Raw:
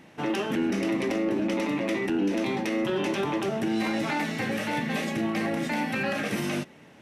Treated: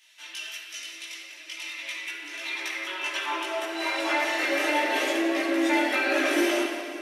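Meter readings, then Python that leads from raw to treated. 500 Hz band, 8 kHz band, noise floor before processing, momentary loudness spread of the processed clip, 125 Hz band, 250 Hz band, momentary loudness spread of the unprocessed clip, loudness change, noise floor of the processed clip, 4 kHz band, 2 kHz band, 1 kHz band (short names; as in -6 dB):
0.0 dB, +5.0 dB, -52 dBFS, 14 LU, under -35 dB, -4.0 dB, 2 LU, +1.0 dB, -44 dBFS, +5.5 dB, +5.0 dB, +2.5 dB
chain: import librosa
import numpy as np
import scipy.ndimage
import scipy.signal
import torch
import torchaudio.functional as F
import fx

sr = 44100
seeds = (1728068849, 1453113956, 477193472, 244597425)

p1 = fx.rattle_buzz(x, sr, strikes_db=-31.0, level_db=-41.0)
p2 = scipy.signal.sosfilt(scipy.signal.butter(12, 280.0, 'highpass', fs=sr, output='sos'), p1)
p3 = p2 + 0.52 * np.pad(p2, (int(3.0 * sr / 1000.0), 0))[:len(p2)]
p4 = fx.over_compress(p3, sr, threshold_db=-30.0, ratio=-1.0)
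p5 = p3 + (p4 * 10.0 ** (0.5 / 20.0))
p6 = fx.filter_sweep_highpass(p5, sr, from_hz=3500.0, to_hz=360.0, start_s=1.26, end_s=5.15, q=0.96)
p7 = fx.chorus_voices(p6, sr, voices=2, hz=0.37, base_ms=18, depth_ms=4.1, mix_pct=50)
p8 = p7 + fx.echo_wet_highpass(p7, sr, ms=178, feedback_pct=66, hz=1700.0, wet_db=-12.5, dry=0)
p9 = fx.room_shoebox(p8, sr, seeds[0], volume_m3=3100.0, walls='mixed', distance_m=2.6)
y = p9 * 10.0 ** (-2.5 / 20.0)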